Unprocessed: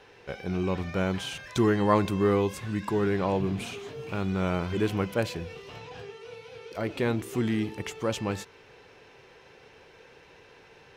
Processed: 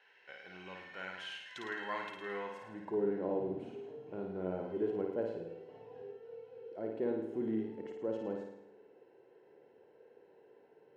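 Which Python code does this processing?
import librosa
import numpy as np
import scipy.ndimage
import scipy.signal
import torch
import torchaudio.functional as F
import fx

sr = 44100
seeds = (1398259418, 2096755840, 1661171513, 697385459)

y = fx.notch_comb(x, sr, f0_hz=1200.0)
y = fx.filter_sweep_bandpass(y, sr, from_hz=2000.0, to_hz=400.0, start_s=2.22, end_s=3.0, q=1.4)
y = fx.room_flutter(y, sr, wall_m=9.3, rt60_s=0.8)
y = F.gain(torch.from_numpy(y), -6.0).numpy()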